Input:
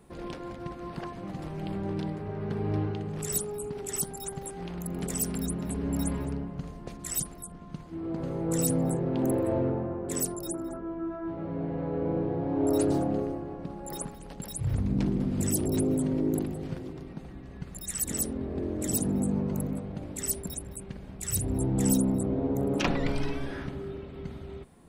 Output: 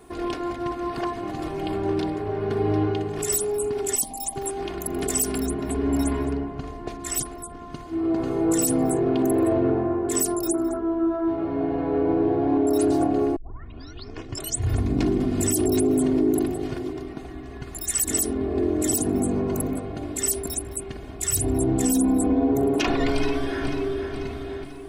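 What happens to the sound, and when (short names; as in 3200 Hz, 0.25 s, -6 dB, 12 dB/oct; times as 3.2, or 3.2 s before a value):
3.95–4.36 fixed phaser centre 390 Hz, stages 6
5.4–7.52 high shelf 5600 Hz -8.5 dB
13.36 tape start 1.43 s
21.83–22.51 comb 4 ms, depth 79%
23.13–24.1 echo throw 0.49 s, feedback 50%, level -7.5 dB
whole clip: low shelf 110 Hz -7 dB; comb 2.8 ms, depth 77%; limiter -20.5 dBFS; gain +7.5 dB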